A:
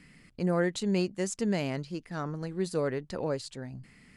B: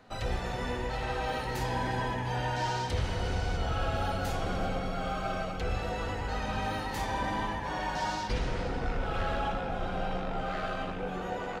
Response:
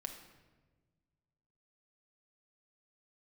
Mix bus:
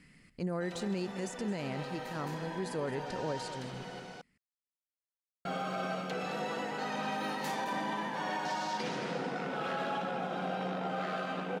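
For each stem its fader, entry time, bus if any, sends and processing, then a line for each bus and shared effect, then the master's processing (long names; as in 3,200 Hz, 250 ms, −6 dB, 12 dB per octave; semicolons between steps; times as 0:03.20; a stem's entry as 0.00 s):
−4.0 dB, 0.00 s, no send, echo send −13.5 dB, de-essing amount 80%
−1.0 dB, 0.50 s, muted 0:04.00–0:05.45, no send, echo send −10 dB, Butterworth high-pass 150 Hz 48 dB per octave; automatic ducking −12 dB, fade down 1.00 s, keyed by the first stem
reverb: not used
echo: single-tap delay 216 ms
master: brickwall limiter −26 dBFS, peak gain reduction 6.5 dB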